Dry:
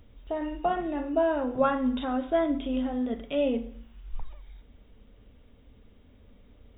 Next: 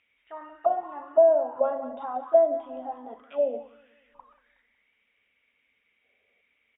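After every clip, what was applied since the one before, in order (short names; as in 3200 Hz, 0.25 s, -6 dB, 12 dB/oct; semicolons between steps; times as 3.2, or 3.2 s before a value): feedback echo 0.184 s, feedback 56%, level -12 dB; auto-wah 640–2400 Hz, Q 7.3, down, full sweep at -22.5 dBFS; spectral gain 6.03–6.41, 360–800 Hz +10 dB; gain +9 dB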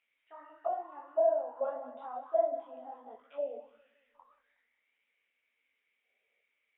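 tone controls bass -12 dB, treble -1 dB; detuned doubles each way 55 cents; gain -5 dB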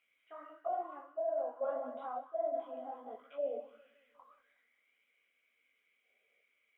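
reverse; compressor 16:1, threshold -35 dBFS, peak gain reduction 14 dB; reverse; notch comb 900 Hz; gain +3.5 dB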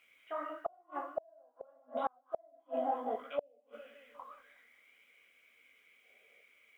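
flipped gate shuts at -33 dBFS, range -37 dB; gain +11 dB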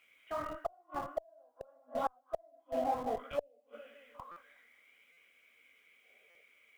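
in parallel at -7 dB: Schmitt trigger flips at -38 dBFS; on the sum: stuck buffer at 4.31/5.12/6.3, samples 256, times 8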